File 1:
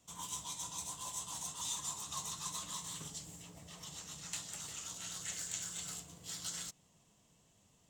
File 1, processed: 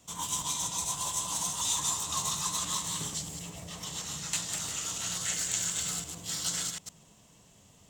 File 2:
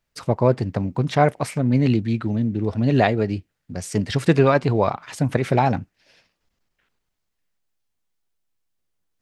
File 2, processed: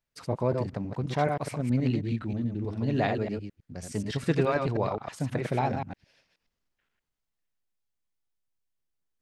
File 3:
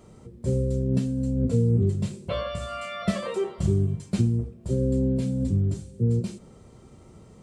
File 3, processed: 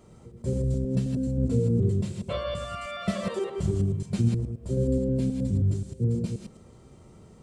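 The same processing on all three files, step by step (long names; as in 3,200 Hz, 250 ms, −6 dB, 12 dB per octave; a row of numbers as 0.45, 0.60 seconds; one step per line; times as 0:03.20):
delay that plays each chunk backwards 106 ms, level −4.5 dB
normalise the peak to −12 dBFS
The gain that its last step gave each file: +9.0, −10.0, −3.0 decibels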